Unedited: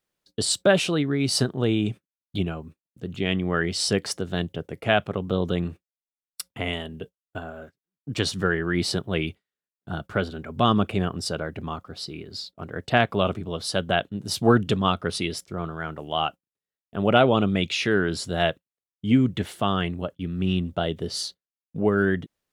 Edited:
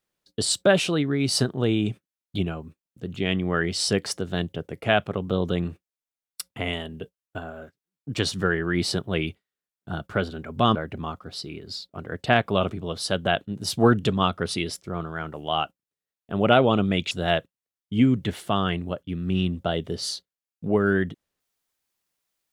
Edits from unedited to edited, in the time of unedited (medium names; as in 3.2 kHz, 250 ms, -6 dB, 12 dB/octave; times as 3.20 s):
10.75–11.39 s: delete
17.75–18.23 s: delete